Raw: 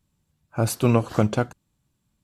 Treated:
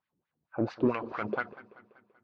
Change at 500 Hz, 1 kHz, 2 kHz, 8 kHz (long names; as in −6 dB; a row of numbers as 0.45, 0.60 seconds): −8.0 dB, −6.5 dB, −2.0 dB, below −30 dB